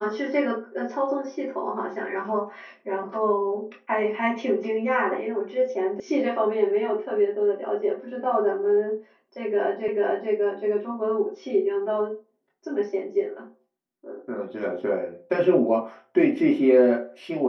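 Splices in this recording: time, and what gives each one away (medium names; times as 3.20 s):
6.00 s: sound stops dead
9.88 s: repeat of the last 0.44 s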